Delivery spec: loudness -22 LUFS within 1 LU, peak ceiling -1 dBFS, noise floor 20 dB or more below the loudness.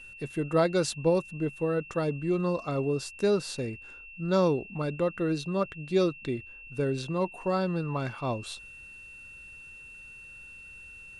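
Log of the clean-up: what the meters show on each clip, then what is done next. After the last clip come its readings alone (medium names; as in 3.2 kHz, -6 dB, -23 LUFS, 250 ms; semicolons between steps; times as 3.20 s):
steady tone 2.7 kHz; tone level -45 dBFS; loudness -29.5 LUFS; peak level -13.5 dBFS; loudness target -22.0 LUFS
-> band-stop 2.7 kHz, Q 30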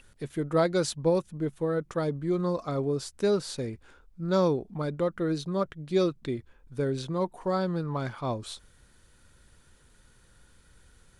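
steady tone not found; loudness -29.5 LUFS; peak level -13.5 dBFS; loudness target -22.0 LUFS
-> trim +7.5 dB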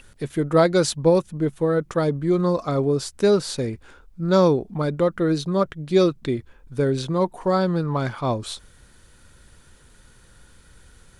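loudness -22.0 LUFS; peak level -6.0 dBFS; noise floor -53 dBFS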